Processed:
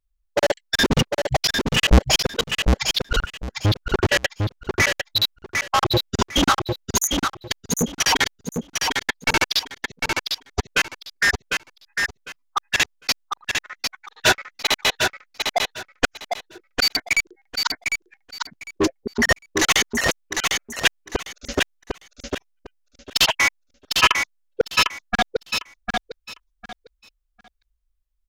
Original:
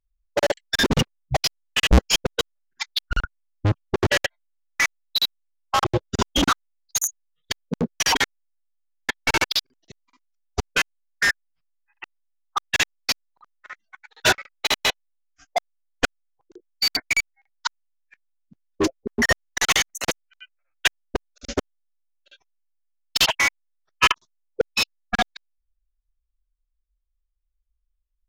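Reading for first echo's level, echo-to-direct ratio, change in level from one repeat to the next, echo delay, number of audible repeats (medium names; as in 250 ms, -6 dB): -4.5 dB, -4.5 dB, -13.5 dB, 752 ms, 3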